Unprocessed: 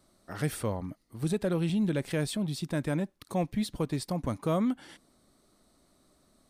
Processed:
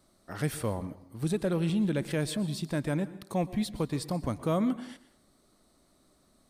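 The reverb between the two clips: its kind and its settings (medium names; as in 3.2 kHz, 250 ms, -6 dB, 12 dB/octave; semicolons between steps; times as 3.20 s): plate-style reverb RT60 0.61 s, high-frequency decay 0.8×, pre-delay 105 ms, DRR 15.5 dB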